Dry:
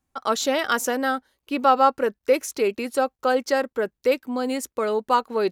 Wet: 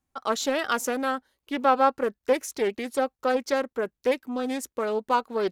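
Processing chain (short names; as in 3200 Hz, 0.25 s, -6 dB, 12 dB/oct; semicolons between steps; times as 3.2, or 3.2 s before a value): Doppler distortion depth 0.18 ms; gain -3.5 dB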